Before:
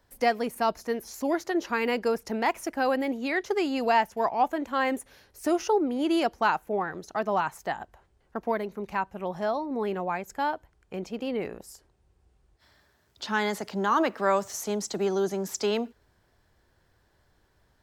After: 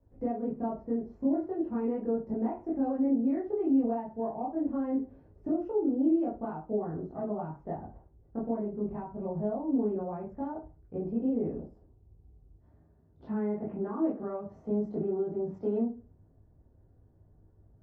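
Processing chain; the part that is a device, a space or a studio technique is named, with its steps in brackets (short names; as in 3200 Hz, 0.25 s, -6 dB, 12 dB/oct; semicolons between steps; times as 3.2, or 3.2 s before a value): 13.26–13.92 resonant high shelf 3300 Hz -10.5 dB, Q 3; television next door (compressor 3:1, threshold -31 dBFS, peak gain reduction 10 dB; LPF 360 Hz 12 dB/oct; reverb RT60 0.35 s, pre-delay 15 ms, DRR -7 dB); gain -1 dB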